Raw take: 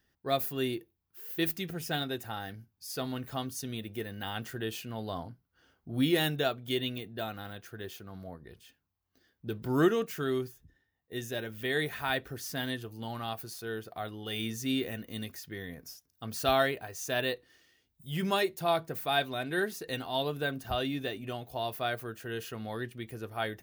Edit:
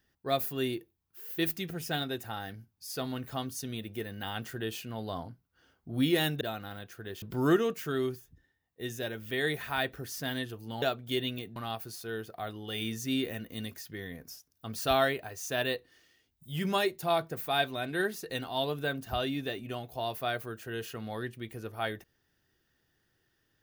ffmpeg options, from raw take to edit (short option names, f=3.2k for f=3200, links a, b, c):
-filter_complex "[0:a]asplit=5[a][b][c][d][e];[a]atrim=end=6.412[f];[b]atrim=start=7.148:end=7.962[g];[c]atrim=start=9.538:end=13.142[h];[d]atrim=start=6.408:end=7.152[i];[e]atrim=start=13.138[j];[f][g]acrossfade=d=0.004:c1=hsin:c2=hsin[k];[k][h]acrossfade=d=0.004:c1=hsin:c2=hsin[l];[l][i]acrossfade=d=0.004:c1=hsin:c2=hsin[m];[m][j]acrossfade=d=0.004:c1=hsin:c2=hsin"